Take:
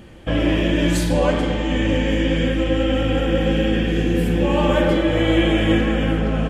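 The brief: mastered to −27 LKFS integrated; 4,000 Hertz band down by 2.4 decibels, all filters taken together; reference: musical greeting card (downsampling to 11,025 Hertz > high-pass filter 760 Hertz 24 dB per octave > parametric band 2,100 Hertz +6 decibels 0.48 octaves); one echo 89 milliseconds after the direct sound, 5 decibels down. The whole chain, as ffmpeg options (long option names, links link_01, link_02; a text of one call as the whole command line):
ffmpeg -i in.wav -af "equalizer=frequency=4000:width_type=o:gain=-5,aecho=1:1:89:0.562,aresample=11025,aresample=44100,highpass=frequency=760:width=0.5412,highpass=frequency=760:width=1.3066,equalizer=frequency=2100:width_type=o:width=0.48:gain=6,volume=-1.5dB" out.wav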